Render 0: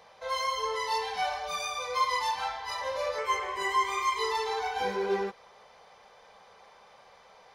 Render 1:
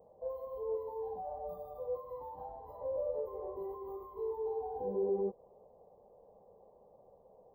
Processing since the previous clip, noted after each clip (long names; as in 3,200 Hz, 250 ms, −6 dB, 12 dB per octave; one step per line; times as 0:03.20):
brickwall limiter −25.5 dBFS, peak gain reduction 9.5 dB
inverse Chebyshev band-stop filter 1,300–9,800 Hz, stop band 50 dB
parametric band 1,300 Hz +14.5 dB 1.2 octaves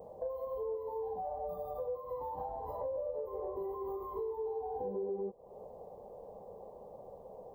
downward compressor 5 to 1, threshold −48 dBFS, peak gain reduction 16.5 dB
level +11 dB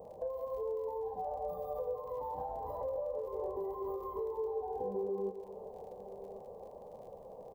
surface crackle 49 per second −54 dBFS
single-tap delay 1,103 ms −15.5 dB
convolution reverb RT60 2.1 s, pre-delay 118 ms, DRR 10.5 dB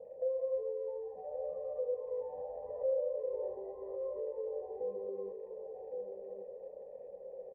formant resonators in series e
single-tap delay 1,127 ms −6 dB
level +5.5 dB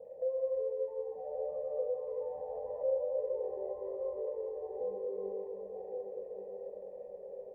comb and all-pass reverb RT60 4.2 s, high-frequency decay 0.5×, pre-delay 25 ms, DRR 3.5 dB